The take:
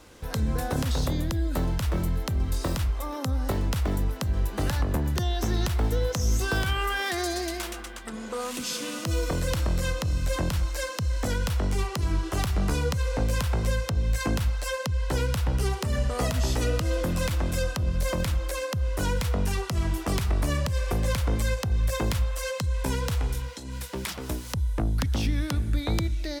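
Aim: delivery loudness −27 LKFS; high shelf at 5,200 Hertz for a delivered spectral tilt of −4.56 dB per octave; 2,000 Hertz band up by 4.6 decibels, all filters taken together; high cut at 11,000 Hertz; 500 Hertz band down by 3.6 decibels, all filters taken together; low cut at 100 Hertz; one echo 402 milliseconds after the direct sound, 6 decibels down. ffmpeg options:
ffmpeg -i in.wav -af "highpass=100,lowpass=11000,equalizer=frequency=500:width_type=o:gain=-4.5,equalizer=frequency=2000:width_type=o:gain=7,highshelf=frequency=5200:gain=-4,aecho=1:1:402:0.501,volume=3dB" out.wav

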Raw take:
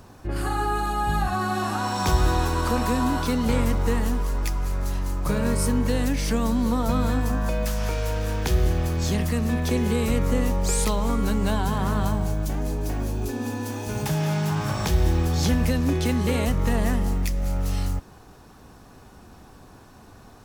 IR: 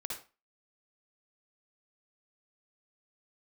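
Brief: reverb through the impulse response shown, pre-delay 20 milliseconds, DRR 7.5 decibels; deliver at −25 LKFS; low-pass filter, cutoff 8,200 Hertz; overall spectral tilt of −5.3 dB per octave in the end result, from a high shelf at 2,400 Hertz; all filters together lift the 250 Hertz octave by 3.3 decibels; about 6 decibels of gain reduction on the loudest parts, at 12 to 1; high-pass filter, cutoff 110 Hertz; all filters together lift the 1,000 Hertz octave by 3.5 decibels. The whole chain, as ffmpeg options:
-filter_complex "[0:a]highpass=110,lowpass=8200,equalizer=frequency=250:width_type=o:gain=4,equalizer=frequency=1000:width_type=o:gain=5.5,highshelf=frequency=2400:gain=-8,acompressor=threshold=-23dB:ratio=12,asplit=2[link_01][link_02];[1:a]atrim=start_sample=2205,adelay=20[link_03];[link_02][link_03]afir=irnorm=-1:irlink=0,volume=-8dB[link_04];[link_01][link_04]amix=inputs=2:normalize=0,volume=2.5dB"

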